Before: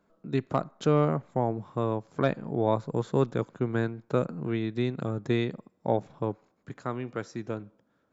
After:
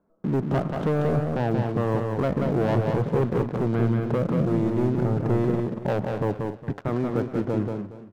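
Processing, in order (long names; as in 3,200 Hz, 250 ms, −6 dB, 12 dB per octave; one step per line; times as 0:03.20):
low-pass filter 1,000 Hz 12 dB per octave
leveller curve on the samples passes 3
brickwall limiter −24 dBFS, peak gain reduction 11.5 dB
on a send: single-tap delay 183 ms −4 dB
on the sum: feedback echo with a swinging delay time 229 ms, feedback 31%, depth 119 cents, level −12.5 dB
level +6 dB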